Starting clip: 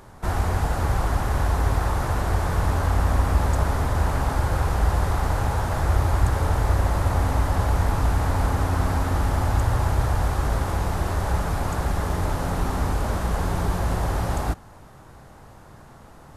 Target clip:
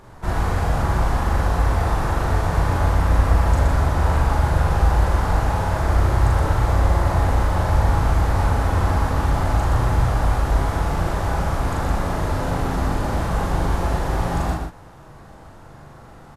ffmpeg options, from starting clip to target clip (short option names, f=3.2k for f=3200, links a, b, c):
-filter_complex "[0:a]highshelf=f=6.9k:g=-7,asplit=2[a][b];[b]adelay=41,volume=-2.5dB[c];[a][c]amix=inputs=2:normalize=0,aecho=1:1:34.99|122.4:0.355|0.562"